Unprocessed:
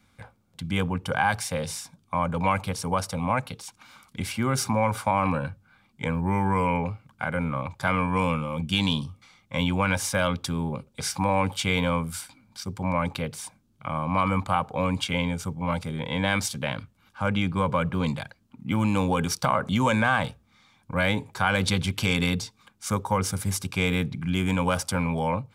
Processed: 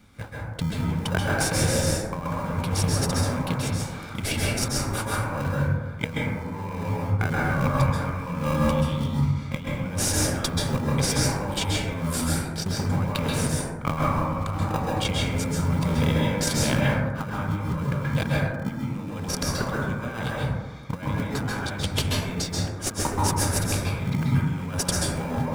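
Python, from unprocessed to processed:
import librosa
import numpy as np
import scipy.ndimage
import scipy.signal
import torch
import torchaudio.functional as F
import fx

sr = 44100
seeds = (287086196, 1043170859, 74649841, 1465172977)

p1 = fx.sample_hold(x, sr, seeds[0], rate_hz=1100.0, jitter_pct=0)
p2 = x + (p1 * 10.0 ** (-4.0 / 20.0))
p3 = fx.over_compress(p2, sr, threshold_db=-28.0, ratio=-0.5)
p4 = fx.rev_plate(p3, sr, seeds[1], rt60_s=1.3, hf_ratio=0.3, predelay_ms=120, drr_db=-5.0)
y = p4 * 10.0 ** (-1.5 / 20.0)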